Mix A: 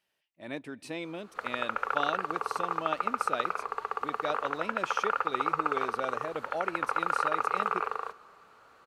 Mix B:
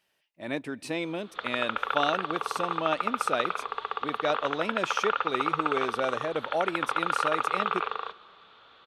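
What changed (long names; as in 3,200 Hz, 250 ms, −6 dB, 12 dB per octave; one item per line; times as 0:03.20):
speech +6.0 dB
background: add low-pass with resonance 3,500 Hz, resonance Q 10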